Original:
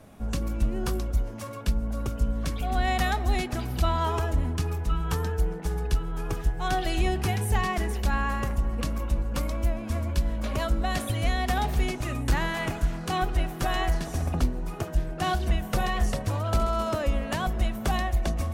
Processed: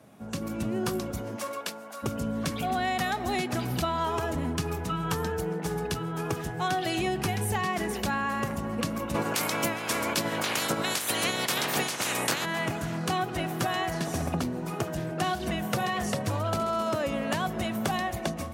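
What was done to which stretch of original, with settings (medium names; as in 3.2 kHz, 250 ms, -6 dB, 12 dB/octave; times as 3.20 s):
1.35–2.02 s: high-pass 280 Hz -> 1 kHz
9.14–12.44 s: spectral peaks clipped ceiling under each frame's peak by 30 dB
whole clip: level rider gain up to 8 dB; high-pass 110 Hz 24 dB/octave; compression, threshold -22 dBFS; trim -3 dB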